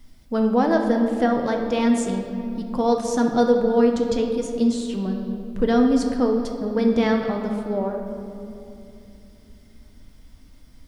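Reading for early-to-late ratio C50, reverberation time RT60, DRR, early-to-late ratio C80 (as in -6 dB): 4.5 dB, 2.8 s, 2.5 dB, 6.0 dB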